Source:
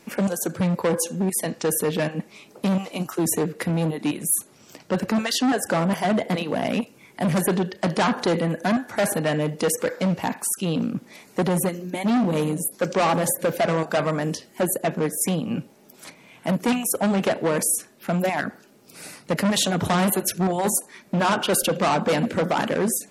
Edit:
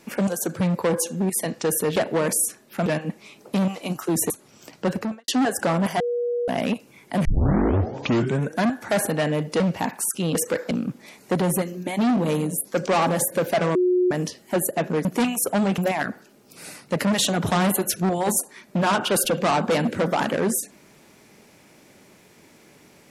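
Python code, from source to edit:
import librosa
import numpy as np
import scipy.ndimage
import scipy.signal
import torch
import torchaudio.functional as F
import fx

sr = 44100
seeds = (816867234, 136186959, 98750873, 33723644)

y = fx.studio_fade_out(x, sr, start_s=4.96, length_s=0.39)
y = fx.edit(y, sr, fx.cut(start_s=3.4, length_s=0.97),
    fx.bleep(start_s=6.07, length_s=0.48, hz=481.0, db=-21.5),
    fx.tape_start(start_s=7.32, length_s=1.35),
    fx.move(start_s=9.67, length_s=0.36, to_s=10.78),
    fx.bleep(start_s=13.82, length_s=0.36, hz=362.0, db=-16.0),
    fx.cut(start_s=15.12, length_s=1.41),
    fx.move(start_s=17.26, length_s=0.9, to_s=1.96), tone=tone)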